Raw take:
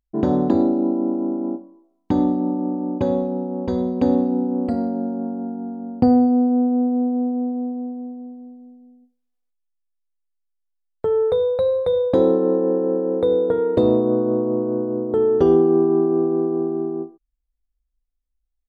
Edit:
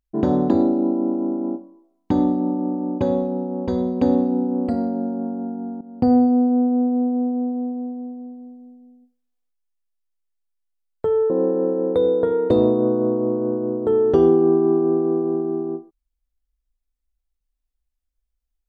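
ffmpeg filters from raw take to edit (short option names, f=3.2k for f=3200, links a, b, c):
-filter_complex "[0:a]asplit=3[a][b][c];[a]atrim=end=5.81,asetpts=PTS-STARTPTS,afade=t=out:st=5.806:d=0.004:c=hsin:silence=0.188365[d];[b]atrim=start=5.81:end=11.302,asetpts=PTS-STARTPTS,afade=t=in:d=0.34:silence=0.188365[e];[c]atrim=start=12.568[f];[d][e]concat=n=2:v=0:a=1[g];[g][f]acrossfade=d=0.004:c1=hsin:c2=hsin"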